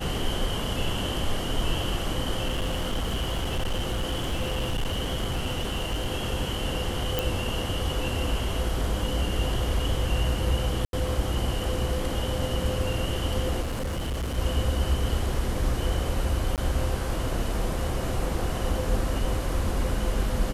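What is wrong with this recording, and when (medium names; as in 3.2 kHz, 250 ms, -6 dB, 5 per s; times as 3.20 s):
2.46–6.08 s: clipped -23 dBFS
7.19 s: pop
10.85–10.93 s: dropout 82 ms
13.61–14.38 s: clipped -26 dBFS
16.56–16.58 s: dropout 18 ms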